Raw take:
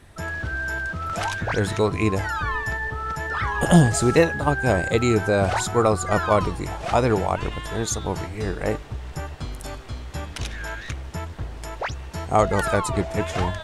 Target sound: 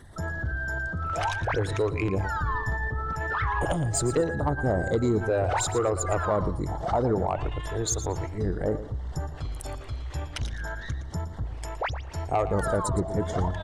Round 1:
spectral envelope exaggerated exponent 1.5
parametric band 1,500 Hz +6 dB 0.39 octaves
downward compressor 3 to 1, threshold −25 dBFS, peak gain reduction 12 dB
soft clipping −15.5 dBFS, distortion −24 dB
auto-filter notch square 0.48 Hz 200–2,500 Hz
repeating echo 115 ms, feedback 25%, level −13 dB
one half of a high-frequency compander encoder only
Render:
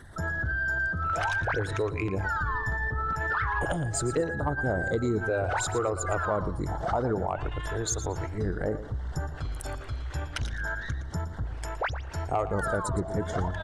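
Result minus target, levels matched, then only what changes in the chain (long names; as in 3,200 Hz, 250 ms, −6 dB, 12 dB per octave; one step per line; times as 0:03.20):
2,000 Hz band +4.5 dB; downward compressor: peak gain reduction +4 dB
change: parametric band 1,500 Hz −2.5 dB 0.39 octaves
change: downward compressor 3 to 1, threshold −19 dBFS, peak gain reduction 8 dB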